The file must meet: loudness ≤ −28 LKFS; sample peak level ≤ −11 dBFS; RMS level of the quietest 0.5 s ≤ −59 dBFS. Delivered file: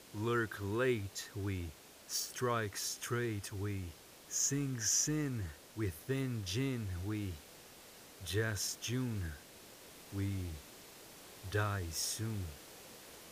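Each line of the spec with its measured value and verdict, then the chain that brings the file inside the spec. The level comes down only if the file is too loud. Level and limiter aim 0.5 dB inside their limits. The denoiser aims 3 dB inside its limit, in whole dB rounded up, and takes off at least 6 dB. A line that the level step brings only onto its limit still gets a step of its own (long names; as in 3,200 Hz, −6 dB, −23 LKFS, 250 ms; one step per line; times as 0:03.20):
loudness −37.5 LKFS: in spec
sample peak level −20.0 dBFS: in spec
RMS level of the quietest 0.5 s −56 dBFS: out of spec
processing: broadband denoise 6 dB, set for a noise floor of −56 dBFS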